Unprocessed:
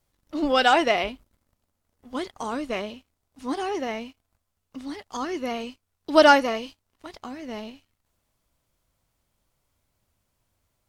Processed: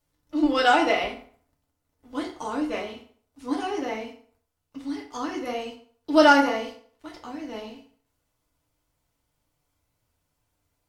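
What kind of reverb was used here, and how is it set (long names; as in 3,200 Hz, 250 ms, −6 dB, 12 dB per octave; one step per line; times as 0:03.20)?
feedback delay network reverb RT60 0.52 s, low-frequency decay 0.85×, high-frequency decay 0.75×, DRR −1.5 dB
level −5 dB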